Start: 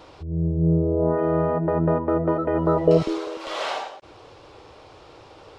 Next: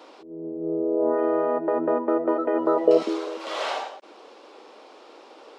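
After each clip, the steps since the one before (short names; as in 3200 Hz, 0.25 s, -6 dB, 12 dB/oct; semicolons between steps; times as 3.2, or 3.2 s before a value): elliptic high-pass 220 Hz, stop band 40 dB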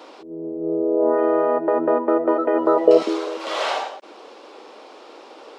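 dynamic EQ 190 Hz, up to -4 dB, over -40 dBFS, Q 1.1; gain +5 dB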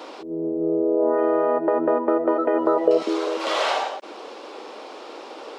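compressor 2:1, threshold -26 dBFS, peak gain reduction 10 dB; gain +4.5 dB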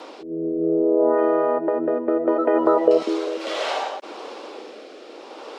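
rotary speaker horn 0.65 Hz; gain +2.5 dB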